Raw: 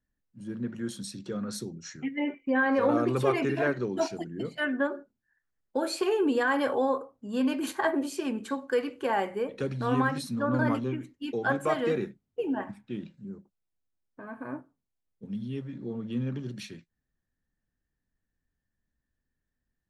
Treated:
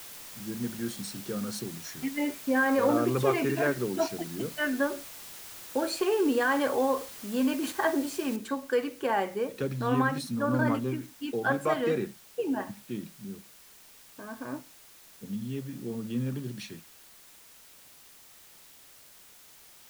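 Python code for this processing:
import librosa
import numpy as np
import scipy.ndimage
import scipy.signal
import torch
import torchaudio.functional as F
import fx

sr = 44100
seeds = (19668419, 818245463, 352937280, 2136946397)

y = fx.noise_floor_step(x, sr, seeds[0], at_s=8.36, before_db=-45, after_db=-54, tilt_db=0.0)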